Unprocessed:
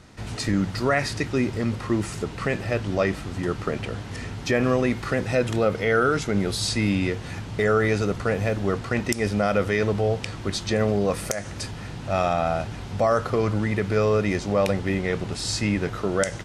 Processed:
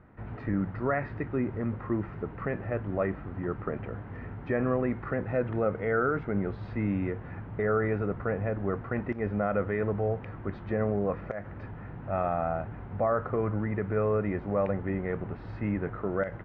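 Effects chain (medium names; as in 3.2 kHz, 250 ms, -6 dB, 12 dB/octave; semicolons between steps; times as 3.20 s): low-pass 1.8 kHz 24 dB/octave; trim -6 dB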